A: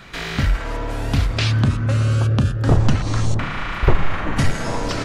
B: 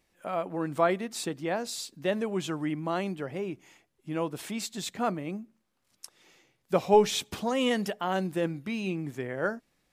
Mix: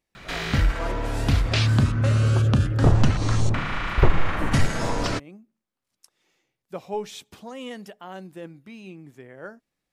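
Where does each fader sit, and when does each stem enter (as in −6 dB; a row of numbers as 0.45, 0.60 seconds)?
−2.0, −9.5 decibels; 0.15, 0.00 seconds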